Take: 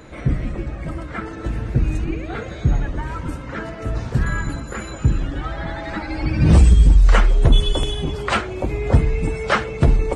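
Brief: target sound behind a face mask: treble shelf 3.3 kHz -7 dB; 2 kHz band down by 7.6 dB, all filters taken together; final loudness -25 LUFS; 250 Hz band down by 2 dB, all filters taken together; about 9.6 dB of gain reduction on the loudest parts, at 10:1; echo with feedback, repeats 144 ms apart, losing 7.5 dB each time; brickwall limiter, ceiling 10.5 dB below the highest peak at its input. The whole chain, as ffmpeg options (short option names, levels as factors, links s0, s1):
-af "equalizer=f=250:t=o:g=-3,equalizer=f=2000:t=o:g=-8,acompressor=threshold=0.141:ratio=10,alimiter=limit=0.106:level=0:latency=1,highshelf=f=3300:g=-7,aecho=1:1:144|288|432|576|720:0.422|0.177|0.0744|0.0312|0.0131,volume=1.68"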